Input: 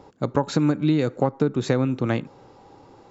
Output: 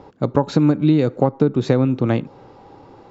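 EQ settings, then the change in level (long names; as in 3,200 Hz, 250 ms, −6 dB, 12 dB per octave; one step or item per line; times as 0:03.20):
dynamic equaliser 1,700 Hz, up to −5 dB, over −42 dBFS, Q 1
high-frequency loss of the air 120 metres
+5.5 dB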